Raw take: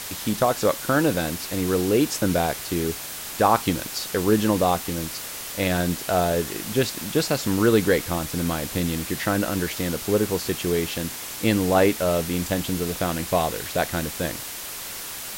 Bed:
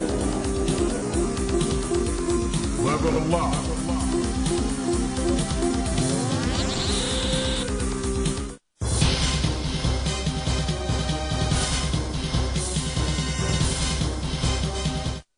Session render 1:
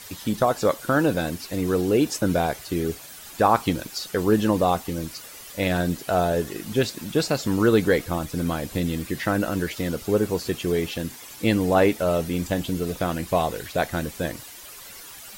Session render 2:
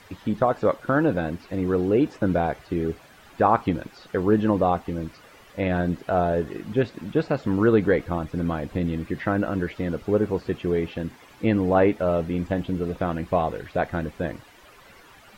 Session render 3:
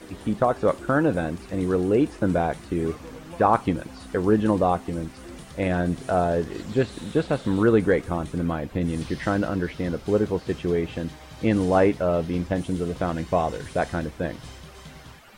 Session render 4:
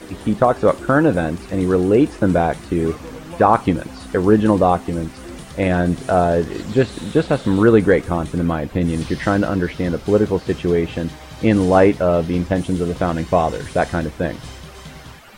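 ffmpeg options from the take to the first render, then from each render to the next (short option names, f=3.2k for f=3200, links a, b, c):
-af "afftdn=nr=11:nf=-35"
-filter_complex "[0:a]acrossover=split=2900[a][b];[b]acompressor=threshold=-48dB:ratio=4:attack=1:release=60[c];[a][c]amix=inputs=2:normalize=0,equalizer=f=13k:t=o:w=2:g=-13"
-filter_complex "[1:a]volume=-18.5dB[a];[0:a][a]amix=inputs=2:normalize=0"
-af "volume=6.5dB,alimiter=limit=-1dB:level=0:latency=1"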